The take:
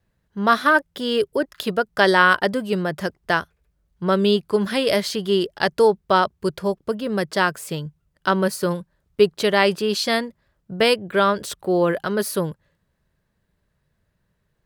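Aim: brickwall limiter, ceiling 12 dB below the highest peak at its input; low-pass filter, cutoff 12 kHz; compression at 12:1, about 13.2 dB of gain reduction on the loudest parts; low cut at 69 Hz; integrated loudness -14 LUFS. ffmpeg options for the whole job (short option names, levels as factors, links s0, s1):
-af "highpass=69,lowpass=12000,acompressor=threshold=0.0631:ratio=12,volume=7.5,alimiter=limit=0.75:level=0:latency=1"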